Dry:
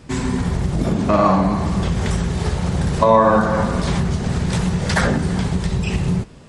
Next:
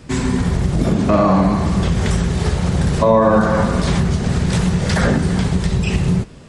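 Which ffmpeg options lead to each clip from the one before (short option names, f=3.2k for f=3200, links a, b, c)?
-filter_complex "[0:a]equalizer=f=890:t=o:w=0.6:g=-2.5,acrossover=split=670[a][b];[b]alimiter=limit=-16dB:level=0:latency=1:release=34[c];[a][c]amix=inputs=2:normalize=0,volume=3dB"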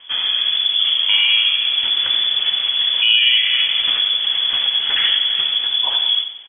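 -filter_complex "[0:a]asplit=2[a][b];[b]aecho=0:1:91|182|273|364:0.316|0.123|0.0481|0.0188[c];[a][c]amix=inputs=2:normalize=0,lowpass=f=3k:t=q:w=0.5098,lowpass=f=3k:t=q:w=0.6013,lowpass=f=3k:t=q:w=0.9,lowpass=f=3k:t=q:w=2.563,afreqshift=-3500,volume=-2dB"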